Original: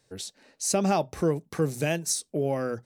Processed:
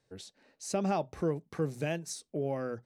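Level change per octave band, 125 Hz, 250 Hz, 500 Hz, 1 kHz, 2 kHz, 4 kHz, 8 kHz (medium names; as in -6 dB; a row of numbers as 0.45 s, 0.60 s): -6.0 dB, -6.0 dB, -6.0 dB, -6.5 dB, -7.5 dB, -10.5 dB, -13.5 dB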